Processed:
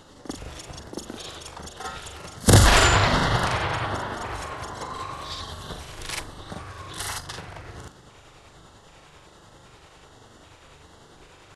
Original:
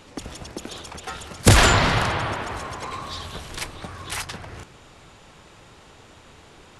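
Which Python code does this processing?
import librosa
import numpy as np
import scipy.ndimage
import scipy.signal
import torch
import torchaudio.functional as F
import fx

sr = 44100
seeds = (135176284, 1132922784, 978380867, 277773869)

y = fx.filter_lfo_notch(x, sr, shape='square', hz=2.2, low_hz=220.0, high_hz=2400.0, q=2.5)
y = fx.stretch_grains(y, sr, factor=1.7, grain_ms=197.0)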